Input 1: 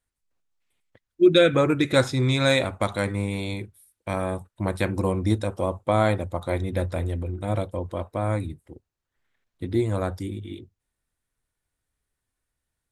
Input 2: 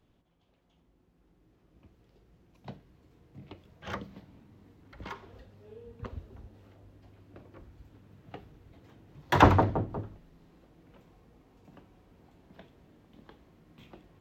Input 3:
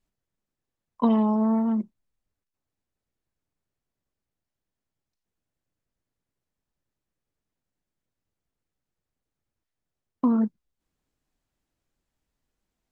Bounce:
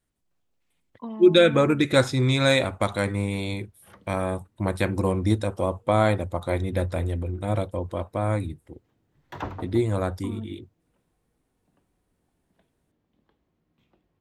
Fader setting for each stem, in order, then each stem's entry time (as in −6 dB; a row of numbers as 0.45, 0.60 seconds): +0.5, −14.5, −15.0 decibels; 0.00, 0.00, 0.00 seconds